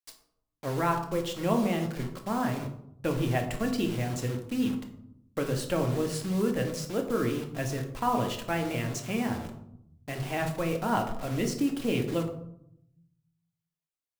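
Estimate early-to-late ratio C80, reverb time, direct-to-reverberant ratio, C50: 11.5 dB, 0.70 s, 3.0 dB, 9.0 dB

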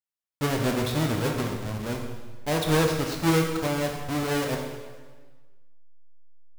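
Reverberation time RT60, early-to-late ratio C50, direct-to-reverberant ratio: 1.4 s, 4.0 dB, 1.5 dB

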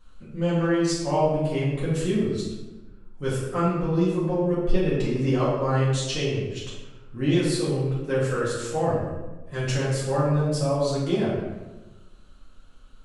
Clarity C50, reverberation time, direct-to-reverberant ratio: 0.5 dB, 1.1 s, −9.0 dB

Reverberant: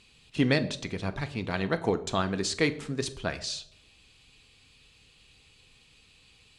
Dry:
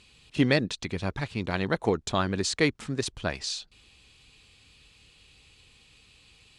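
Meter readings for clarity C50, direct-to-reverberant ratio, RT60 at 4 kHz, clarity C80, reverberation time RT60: 16.0 dB, 9.0 dB, 0.40 s, 18.5 dB, 0.65 s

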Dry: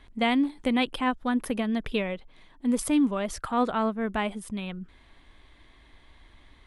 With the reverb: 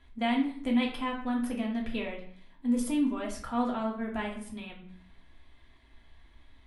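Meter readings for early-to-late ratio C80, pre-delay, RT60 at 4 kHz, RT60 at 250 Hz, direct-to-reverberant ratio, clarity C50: 11.0 dB, 3 ms, 0.45 s, 0.70 s, −2.5 dB, 7.0 dB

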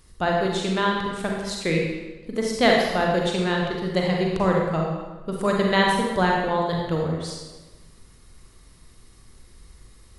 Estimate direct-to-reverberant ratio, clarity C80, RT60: −1.0 dB, 3.0 dB, 1.2 s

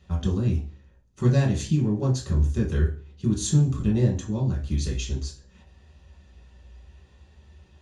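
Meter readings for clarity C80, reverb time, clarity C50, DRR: 14.5 dB, 0.40 s, 8.5 dB, −3.5 dB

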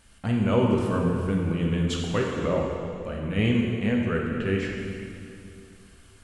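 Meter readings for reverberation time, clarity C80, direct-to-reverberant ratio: 2.6 s, 2.5 dB, −1.5 dB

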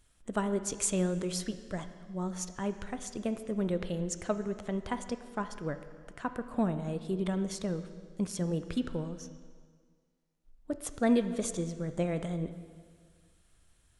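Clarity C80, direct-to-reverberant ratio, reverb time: 12.5 dB, 9.5 dB, 1.8 s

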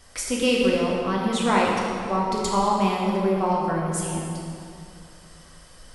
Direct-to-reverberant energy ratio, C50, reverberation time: −4.0 dB, −0.5 dB, 2.6 s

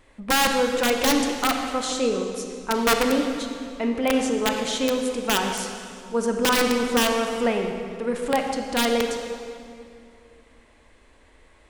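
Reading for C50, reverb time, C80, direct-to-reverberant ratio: 4.0 dB, 2.4 s, 5.5 dB, 3.5 dB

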